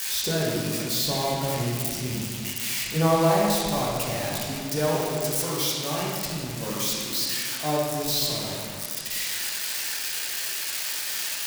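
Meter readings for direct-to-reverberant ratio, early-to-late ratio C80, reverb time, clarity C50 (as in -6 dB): -5.0 dB, 1.0 dB, 2.2 s, -1.0 dB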